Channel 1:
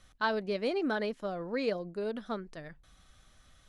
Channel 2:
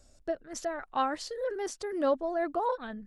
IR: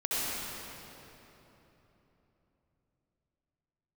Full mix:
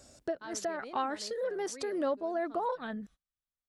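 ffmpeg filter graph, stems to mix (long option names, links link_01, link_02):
-filter_complex "[0:a]adelay=200,volume=-10.5dB[link_01];[1:a]highpass=100,acontrast=45,volume=1.5dB,asplit=2[link_02][link_03];[link_03]apad=whole_len=171486[link_04];[link_01][link_04]sidechaingate=range=-30dB:threshold=-51dB:ratio=16:detection=peak[link_05];[link_05][link_02]amix=inputs=2:normalize=0,acompressor=threshold=-38dB:ratio=2"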